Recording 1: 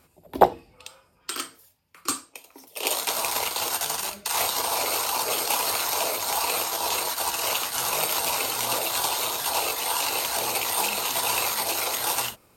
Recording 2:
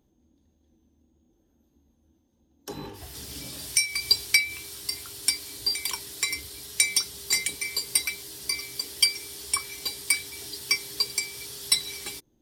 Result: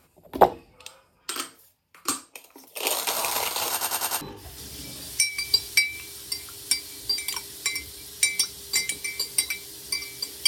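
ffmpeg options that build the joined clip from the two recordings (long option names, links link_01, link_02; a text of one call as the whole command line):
ffmpeg -i cue0.wav -i cue1.wav -filter_complex "[0:a]apad=whole_dur=10.47,atrim=end=10.47,asplit=5[link_01][link_02][link_03][link_04][link_05];[link_01]atrim=end=3.812[link_06];[link_02]atrim=start=3.708:end=3.812[link_07];[link_03]atrim=start=3.708:end=3.812[link_08];[link_04]atrim=start=3.708:end=3.812[link_09];[link_05]atrim=start=3.708:end=3.812[link_10];[1:a]atrim=start=2.778:end=9.04[link_11];[link_06][link_07]acrossfade=duration=0.004:curve1=hsin:curve2=hsin[link_12];[link_12][link_08]acrossfade=duration=0.004:curve1=hsin:curve2=hsin[link_13];[link_13][link_09]acrossfade=duration=0.004:curve1=hsin:curve2=hsin[link_14];[link_14][link_10]acrossfade=duration=0.004:curve1=hsin:curve2=hsin[link_15];[link_15][link_11]acrossfade=duration=0.004:curve1=hsin:curve2=hsin" out.wav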